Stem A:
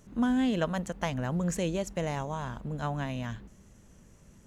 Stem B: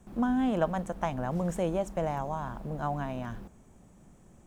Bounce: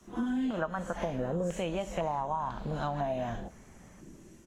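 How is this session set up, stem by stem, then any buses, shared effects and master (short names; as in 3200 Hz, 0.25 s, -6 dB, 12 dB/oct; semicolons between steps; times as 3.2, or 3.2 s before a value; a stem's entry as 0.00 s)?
+2.5 dB, 0.00 s, no send, phase scrambler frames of 0.2 s; HPF 500 Hz 24 dB/oct; compressor 2:1, threshold -43 dBFS, peak gain reduction 9 dB
-6.0 dB, 5.6 ms, no send, AGC gain up to 8.5 dB; stepped low-pass 2 Hz 340–4100 Hz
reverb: off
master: compressor, threshold -29 dBFS, peak gain reduction 12.5 dB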